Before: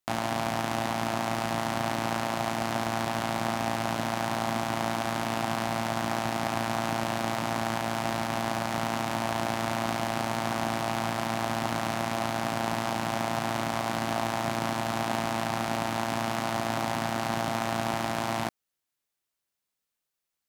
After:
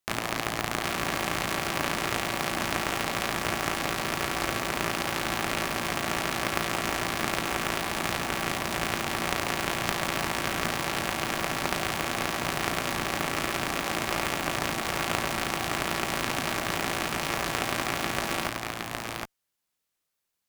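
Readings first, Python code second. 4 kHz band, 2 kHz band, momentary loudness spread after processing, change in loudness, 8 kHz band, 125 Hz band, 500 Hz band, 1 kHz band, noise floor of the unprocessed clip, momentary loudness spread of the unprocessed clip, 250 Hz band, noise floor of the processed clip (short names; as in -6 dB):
+4.5 dB, +4.5 dB, 1 LU, +1.0 dB, +5.0 dB, -2.0 dB, -1.5 dB, -2.0 dB, -85 dBFS, 1 LU, -2.5 dB, -82 dBFS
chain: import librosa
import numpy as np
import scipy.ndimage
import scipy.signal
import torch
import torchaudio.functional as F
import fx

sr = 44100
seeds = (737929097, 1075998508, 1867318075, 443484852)

y = fx.cheby_harmonics(x, sr, harmonics=(3, 4, 7), levels_db=(-10, -24, -22), full_scale_db=-11.0)
y = y + 10.0 ** (-3.5 / 20.0) * np.pad(y, (int(764 * sr / 1000.0), 0))[:len(y)]
y = y * 10.0 ** (7.5 / 20.0)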